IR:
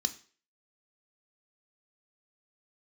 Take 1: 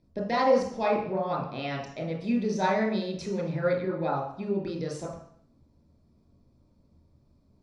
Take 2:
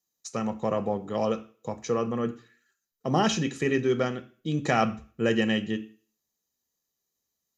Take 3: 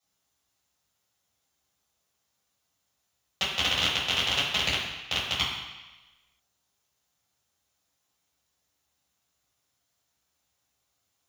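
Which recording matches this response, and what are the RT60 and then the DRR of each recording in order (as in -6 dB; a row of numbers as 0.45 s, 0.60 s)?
2; 0.60 s, 0.45 s, 1.1 s; -2.5 dB, 8.5 dB, -8.5 dB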